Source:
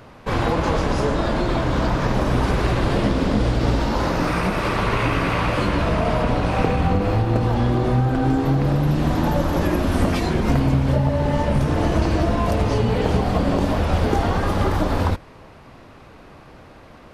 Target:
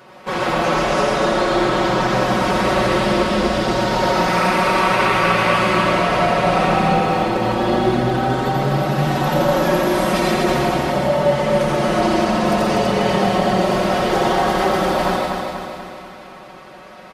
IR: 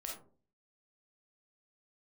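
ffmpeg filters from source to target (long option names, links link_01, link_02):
-filter_complex "[0:a]highpass=frequency=370:poles=1,aecho=1:1:5.4:0.9,aecho=1:1:244|488|732|976|1220|1464|1708|1952:0.596|0.334|0.187|0.105|0.0586|0.0328|0.0184|0.0103,asplit=2[link_01][link_02];[1:a]atrim=start_sample=2205,adelay=86[link_03];[link_02][link_03]afir=irnorm=-1:irlink=0,volume=2dB[link_04];[link_01][link_04]amix=inputs=2:normalize=0"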